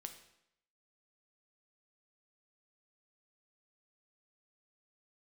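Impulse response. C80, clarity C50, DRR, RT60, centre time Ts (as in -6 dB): 12.5 dB, 10.0 dB, 6.0 dB, 0.75 s, 14 ms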